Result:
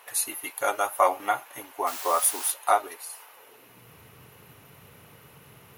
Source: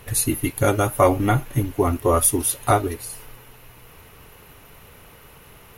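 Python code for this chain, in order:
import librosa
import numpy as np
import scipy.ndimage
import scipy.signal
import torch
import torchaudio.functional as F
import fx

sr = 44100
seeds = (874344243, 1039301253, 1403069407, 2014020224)

y = fx.dmg_noise_colour(x, sr, seeds[0], colour='white', level_db=-32.0, at=(1.86, 2.5), fade=0.02)
y = fx.filter_sweep_highpass(y, sr, from_hz=810.0, to_hz=120.0, start_s=3.3, end_s=3.89, q=1.7)
y = y * librosa.db_to_amplitude(-5.0)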